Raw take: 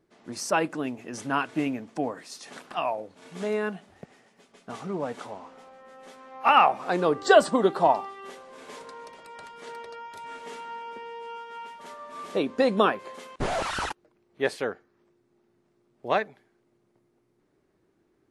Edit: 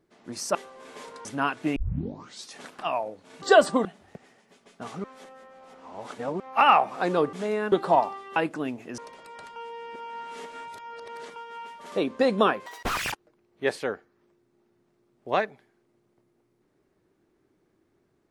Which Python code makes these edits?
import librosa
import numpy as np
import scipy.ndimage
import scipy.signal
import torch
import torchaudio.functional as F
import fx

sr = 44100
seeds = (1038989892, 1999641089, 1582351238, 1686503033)

y = fx.edit(x, sr, fx.swap(start_s=0.55, length_s=0.62, other_s=8.28, other_length_s=0.7),
    fx.tape_start(start_s=1.68, length_s=0.72),
    fx.swap(start_s=3.34, length_s=0.39, other_s=7.21, other_length_s=0.43),
    fx.reverse_span(start_s=4.92, length_s=1.36),
    fx.reverse_span(start_s=9.56, length_s=1.8),
    fx.cut(start_s=11.92, length_s=0.39),
    fx.speed_span(start_s=13.05, length_s=0.85, speed=1.84), tone=tone)